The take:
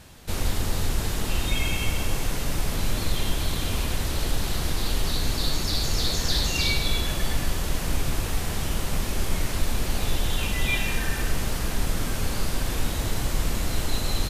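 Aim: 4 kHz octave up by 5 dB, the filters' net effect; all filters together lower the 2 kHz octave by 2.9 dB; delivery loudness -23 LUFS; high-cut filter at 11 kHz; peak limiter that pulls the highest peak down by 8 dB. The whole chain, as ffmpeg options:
-af "lowpass=11000,equalizer=f=2000:t=o:g=-6.5,equalizer=f=4000:t=o:g=7.5,volume=1.68,alimiter=limit=0.282:level=0:latency=1"

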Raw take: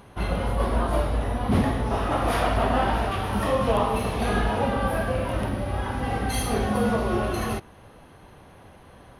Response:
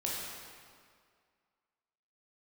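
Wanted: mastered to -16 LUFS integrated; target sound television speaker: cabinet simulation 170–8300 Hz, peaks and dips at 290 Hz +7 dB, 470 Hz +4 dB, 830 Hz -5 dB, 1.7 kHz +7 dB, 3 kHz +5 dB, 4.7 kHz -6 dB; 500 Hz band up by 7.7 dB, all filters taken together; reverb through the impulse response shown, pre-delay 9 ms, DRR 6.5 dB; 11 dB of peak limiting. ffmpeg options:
-filter_complex "[0:a]equalizer=f=500:t=o:g=6.5,alimiter=limit=0.112:level=0:latency=1,asplit=2[s0][s1];[1:a]atrim=start_sample=2205,adelay=9[s2];[s1][s2]afir=irnorm=-1:irlink=0,volume=0.282[s3];[s0][s3]amix=inputs=2:normalize=0,highpass=f=170:w=0.5412,highpass=f=170:w=1.3066,equalizer=f=290:t=q:w=4:g=7,equalizer=f=470:t=q:w=4:g=4,equalizer=f=830:t=q:w=4:g=-5,equalizer=f=1700:t=q:w=4:g=7,equalizer=f=3000:t=q:w=4:g=5,equalizer=f=4700:t=q:w=4:g=-6,lowpass=f=8300:w=0.5412,lowpass=f=8300:w=1.3066,volume=3.16"

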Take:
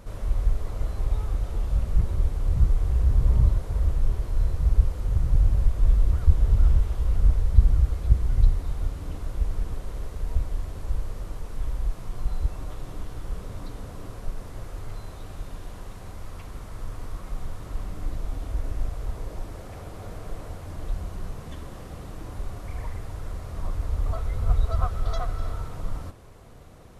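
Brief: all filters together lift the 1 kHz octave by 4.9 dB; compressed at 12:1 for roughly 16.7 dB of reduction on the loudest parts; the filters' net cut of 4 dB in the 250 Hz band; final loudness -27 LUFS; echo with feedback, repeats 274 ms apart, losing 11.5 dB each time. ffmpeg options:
-af "equalizer=f=250:t=o:g=-7.5,equalizer=f=1000:t=o:g=7,acompressor=threshold=0.0447:ratio=12,aecho=1:1:274|548|822:0.266|0.0718|0.0194,volume=3.35"

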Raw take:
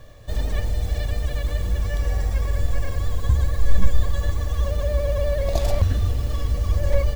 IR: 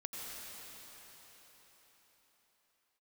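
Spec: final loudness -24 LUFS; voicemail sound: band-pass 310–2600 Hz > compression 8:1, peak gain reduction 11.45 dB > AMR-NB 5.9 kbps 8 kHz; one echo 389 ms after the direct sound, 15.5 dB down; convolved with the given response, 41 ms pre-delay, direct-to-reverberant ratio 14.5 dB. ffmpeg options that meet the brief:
-filter_complex "[0:a]aecho=1:1:389:0.168,asplit=2[s0][s1];[1:a]atrim=start_sample=2205,adelay=41[s2];[s1][s2]afir=irnorm=-1:irlink=0,volume=0.178[s3];[s0][s3]amix=inputs=2:normalize=0,highpass=310,lowpass=2600,acompressor=threshold=0.0224:ratio=8,volume=6.68" -ar 8000 -c:a libopencore_amrnb -b:a 5900

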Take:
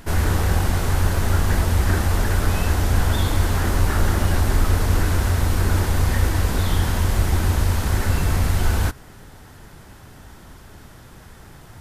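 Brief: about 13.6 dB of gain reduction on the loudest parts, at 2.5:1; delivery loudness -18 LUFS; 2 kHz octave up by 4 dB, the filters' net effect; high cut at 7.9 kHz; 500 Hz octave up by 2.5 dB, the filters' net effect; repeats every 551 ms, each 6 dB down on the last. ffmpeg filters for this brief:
-af "lowpass=7900,equalizer=f=500:t=o:g=3,equalizer=f=2000:t=o:g=5,acompressor=threshold=0.0178:ratio=2.5,aecho=1:1:551|1102|1653|2204|2755|3306:0.501|0.251|0.125|0.0626|0.0313|0.0157,volume=5.96"

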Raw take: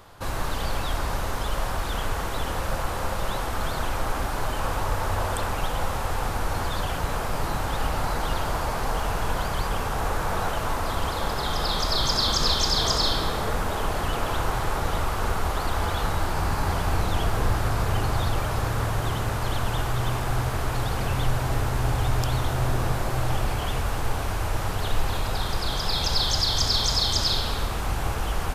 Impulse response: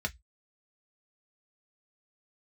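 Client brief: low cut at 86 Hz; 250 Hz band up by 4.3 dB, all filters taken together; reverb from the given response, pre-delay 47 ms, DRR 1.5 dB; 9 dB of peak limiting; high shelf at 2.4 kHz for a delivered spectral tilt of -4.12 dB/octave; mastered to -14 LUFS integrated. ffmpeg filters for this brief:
-filter_complex "[0:a]highpass=86,equalizer=f=250:t=o:g=6,highshelf=f=2400:g=8.5,alimiter=limit=0.211:level=0:latency=1,asplit=2[s0][s1];[1:a]atrim=start_sample=2205,adelay=47[s2];[s1][s2]afir=irnorm=-1:irlink=0,volume=0.531[s3];[s0][s3]amix=inputs=2:normalize=0,volume=2.66"

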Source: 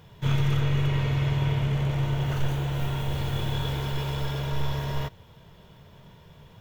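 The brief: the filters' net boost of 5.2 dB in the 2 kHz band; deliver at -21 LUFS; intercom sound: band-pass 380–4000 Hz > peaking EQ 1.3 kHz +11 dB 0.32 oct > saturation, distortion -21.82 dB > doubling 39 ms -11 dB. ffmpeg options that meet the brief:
-filter_complex "[0:a]highpass=380,lowpass=4000,equalizer=f=1300:t=o:w=0.32:g=11,equalizer=f=2000:t=o:g=4.5,asoftclip=threshold=0.0668,asplit=2[s0][s1];[s1]adelay=39,volume=0.282[s2];[s0][s2]amix=inputs=2:normalize=0,volume=4.22"

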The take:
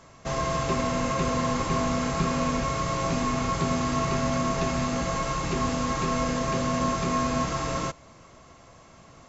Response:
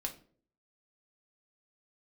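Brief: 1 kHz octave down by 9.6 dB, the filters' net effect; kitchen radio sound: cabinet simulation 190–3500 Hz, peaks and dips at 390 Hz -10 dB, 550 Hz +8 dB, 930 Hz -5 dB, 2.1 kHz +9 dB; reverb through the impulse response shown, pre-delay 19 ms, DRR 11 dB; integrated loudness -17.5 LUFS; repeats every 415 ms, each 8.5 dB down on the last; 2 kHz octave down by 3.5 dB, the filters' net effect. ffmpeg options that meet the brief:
-filter_complex "[0:a]equalizer=f=1000:t=o:g=-8,equalizer=f=2000:t=o:g=-8,aecho=1:1:415|830|1245|1660:0.376|0.143|0.0543|0.0206,asplit=2[s0][s1];[1:a]atrim=start_sample=2205,adelay=19[s2];[s1][s2]afir=irnorm=-1:irlink=0,volume=0.282[s3];[s0][s3]amix=inputs=2:normalize=0,highpass=190,equalizer=f=390:t=q:w=4:g=-10,equalizer=f=550:t=q:w=4:g=8,equalizer=f=930:t=q:w=4:g=-5,equalizer=f=2100:t=q:w=4:g=9,lowpass=f=3500:w=0.5412,lowpass=f=3500:w=1.3066,volume=4.47"

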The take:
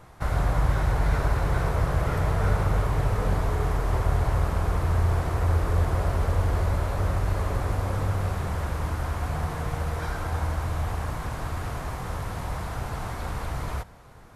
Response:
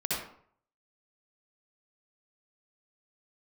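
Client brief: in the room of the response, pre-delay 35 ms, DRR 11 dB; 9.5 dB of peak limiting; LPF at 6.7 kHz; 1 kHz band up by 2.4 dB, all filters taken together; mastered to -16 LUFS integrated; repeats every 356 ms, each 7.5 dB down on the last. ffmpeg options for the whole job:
-filter_complex "[0:a]lowpass=6700,equalizer=f=1000:t=o:g=3,alimiter=limit=0.0944:level=0:latency=1,aecho=1:1:356|712|1068|1424|1780:0.422|0.177|0.0744|0.0312|0.0131,asplit=2[s0][s1];[1:a]atrim=start_sample=2205,adelay=35[s2];[s1][s2]afir=irnorm=-1:irlink=0,volume=0.119[s3];[s0][s3]amix=inputs=2:normalize=0,volume=4.73"

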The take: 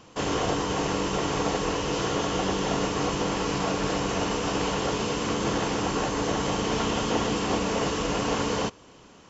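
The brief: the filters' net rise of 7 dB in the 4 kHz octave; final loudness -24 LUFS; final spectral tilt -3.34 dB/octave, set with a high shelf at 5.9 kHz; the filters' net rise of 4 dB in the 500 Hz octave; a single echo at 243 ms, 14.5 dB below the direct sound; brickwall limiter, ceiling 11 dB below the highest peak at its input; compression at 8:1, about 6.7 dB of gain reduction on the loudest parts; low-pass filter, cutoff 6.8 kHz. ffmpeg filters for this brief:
-af "lowpass=6800,equalizer=f=500:t=o:g=4.5,equalizer=f=4000:t=o:g=8,highshelf=f=5900:g=6,acompressor=threshold=0.0501:ratio=8,alimiter=level_in=1.58:limit=0.0631:level=0:latency=1,volume=0.631,aecho=1:1:243:0.188,volume=3.98"

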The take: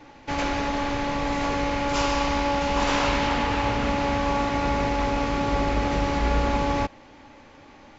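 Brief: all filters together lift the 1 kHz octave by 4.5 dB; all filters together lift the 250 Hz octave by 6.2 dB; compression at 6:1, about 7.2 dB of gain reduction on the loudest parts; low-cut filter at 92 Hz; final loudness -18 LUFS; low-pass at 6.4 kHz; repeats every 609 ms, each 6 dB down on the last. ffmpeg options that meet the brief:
-af "highpass=92,lowpass=6400,equalizer=f=250:t=o:g=7,equalizer=f=1000:t=o:g=5,acompressor=threshold=0.0631:ratio=6,aecho=1:1:609|1218|1827|2436|3045|3654:0.501|0.251|0.125|0.0626|0.0313|0.0157,volume=2.82"

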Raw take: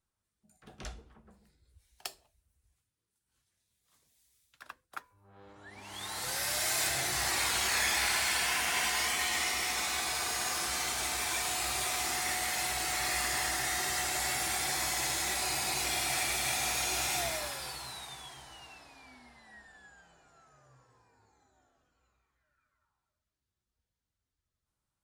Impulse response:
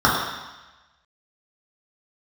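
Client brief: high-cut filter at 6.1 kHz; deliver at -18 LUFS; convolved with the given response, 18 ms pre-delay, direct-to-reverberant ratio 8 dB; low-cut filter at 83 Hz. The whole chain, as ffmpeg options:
-filter_complex "[0:a]highpass=83,lowpass=6100,asplit=2[s0][s1];[1:a]atrim=start_sample=2205,adelay=18[s2];[s1][s2]afir=irnorm=-1:irlink=0,volume=0.0251[s3];[s0][s3]amix=inputs=2:normalize=0,volume=5.01"

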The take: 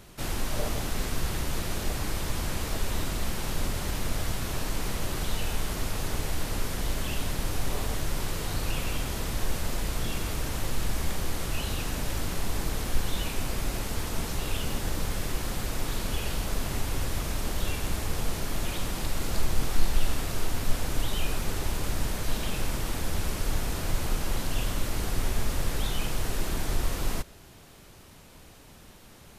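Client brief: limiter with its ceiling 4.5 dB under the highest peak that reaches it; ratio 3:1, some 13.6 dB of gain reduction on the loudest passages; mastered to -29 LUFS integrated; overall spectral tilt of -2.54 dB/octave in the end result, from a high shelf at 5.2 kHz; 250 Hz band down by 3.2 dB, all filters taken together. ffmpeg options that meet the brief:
-af "equalizer=f=250:t=o:g=-4.5,highshelf=f=5200:g=8,acompressor=threshold=0.0224:ratio=3,volume=2.99,alimiter=limit=0.141:level=0:latency=1"

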